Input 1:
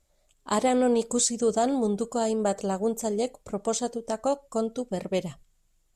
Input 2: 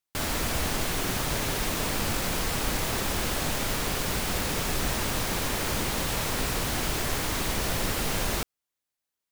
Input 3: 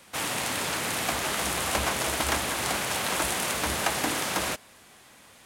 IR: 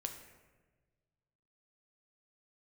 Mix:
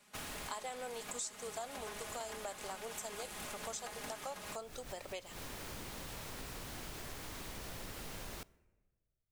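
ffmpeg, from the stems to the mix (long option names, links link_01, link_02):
-filter_complex "[0:a]highpass=850,volume=-1dB,asplit=2[link_01][link_02];[1:a]volume=-16.5dB,asplit=2[link_03][link_04];[link_04]volume=-14.5dB[link_05];[2:a]aecho=1:1:4.8:0.98,volume=-19dB,asplit=2[link_06][link_07];[link_07]volume=-3.5dB[link_08];[link_02]apad=whole_len=410582[link_09];[link_03][link_09]sidechaincompress=threshold=-54dB:ratio=4:attack=16:release=105[link_10];[3:a]atrim=start_sample=2205[link_11];[link_05][link_08]amix=inputs=2:normalize=0[link_12];[link_12][link_11]afir=irnorm=-1:irlink=0[link_13];[link_01][link_10][link_06][link_13]amix=inputs=4:normalize=0,acompressor=threshold=-42dB:ratio=4"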